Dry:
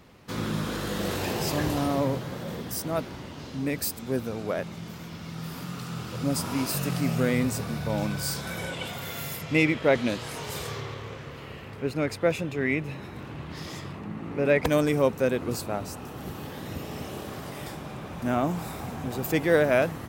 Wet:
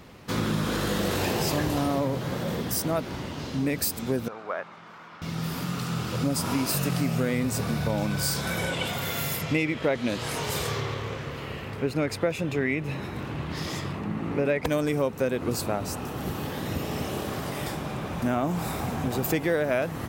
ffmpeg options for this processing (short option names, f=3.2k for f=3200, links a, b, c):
-filter_complex "[0:a]asettb=1/sr,asplit=3[a][b][c];[a]atrim=end=4.284[d];[b]atrim=start=4.28:end=5.22,asetpts=PTS-STARTPTS,afade=t=in:d=0.004:c=qsin,afade=t=out:st=0.936:d=0.004:c=qsin,bandpass=f=1.2k:t=q:w=1.7[e];[c]atrim=start=5.216[f];[d][e]acrossfade=d=0.004:c1=hsin:c2=qsin[g];[g][f]acrossfade=d=0.004:c1=qsin:c2=hsin,acompressor=threshold=-28dB:ratio=5,volume=5.5dB"